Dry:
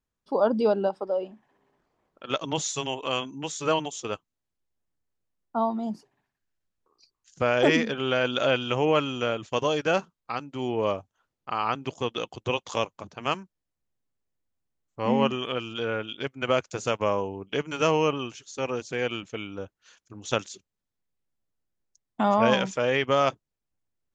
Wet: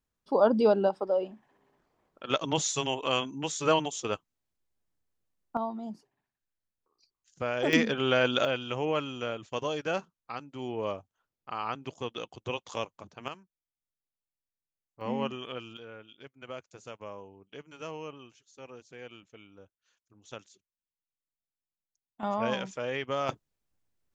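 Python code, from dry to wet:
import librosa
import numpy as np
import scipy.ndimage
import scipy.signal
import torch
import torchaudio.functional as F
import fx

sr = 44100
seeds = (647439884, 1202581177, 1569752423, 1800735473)

y = fx.gain(x, sr, db=fx.steps((0.0, 0.0), (5.57, -8.0), (7.73, 0.0), (8.45, -7.0), (13.28, -15.5), (15.01, -9.0), (15.77, -17.5), (22.23, -9.0), (23.29, 3.0)))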